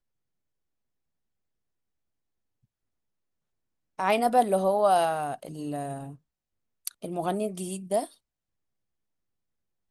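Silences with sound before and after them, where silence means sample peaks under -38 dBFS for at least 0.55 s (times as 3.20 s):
6.13–6.87 s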